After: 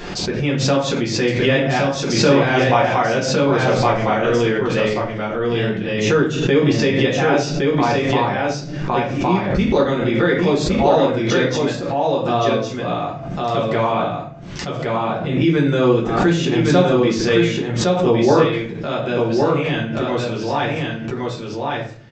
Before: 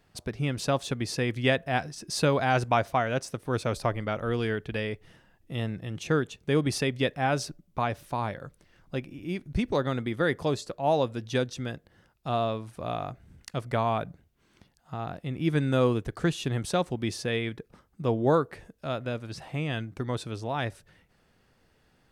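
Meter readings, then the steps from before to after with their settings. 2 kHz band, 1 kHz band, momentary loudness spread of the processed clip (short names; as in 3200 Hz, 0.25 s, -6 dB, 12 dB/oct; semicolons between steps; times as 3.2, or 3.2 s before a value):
+11.5 dB, +11.0 dB, 9 LU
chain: de-esser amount 75%; low shelf 110 Hz -12 dB; in parallel at -2.5 dB: limiter -20.5 dBFS, peak gain reduction 10 dB; on the sum: echo 1.113 s -3 dB; shoebox room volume 44 m³, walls mixed, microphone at 1.2 m; downsampling 16000 Hz; backwards sustainer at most 45 dB/s; gain -1 dB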